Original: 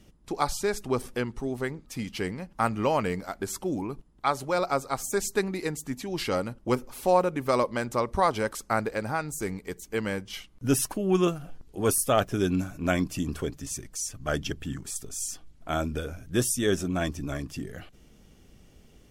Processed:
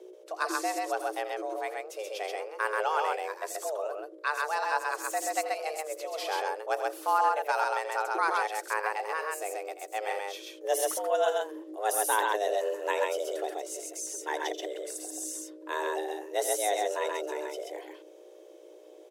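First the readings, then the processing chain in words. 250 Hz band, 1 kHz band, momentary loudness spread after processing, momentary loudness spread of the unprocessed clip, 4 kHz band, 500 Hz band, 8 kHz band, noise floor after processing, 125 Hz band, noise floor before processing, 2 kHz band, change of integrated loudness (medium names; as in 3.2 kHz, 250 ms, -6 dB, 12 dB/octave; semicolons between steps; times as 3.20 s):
-15.0 dB, +1.5 dB, 10 LU, 10 LU, -2.5 dB, -2.5 dB, -2.5 dB, -51 dBFS, under -40 dB, -57 dBFS, +2.0 dB, -2.5 dB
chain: hum 60 Hz, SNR 14 dB; frequency shift +310 Hz; loudspeakers at several distances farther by 29 m -12 dB, 45 m -2 dB; trim -5 dB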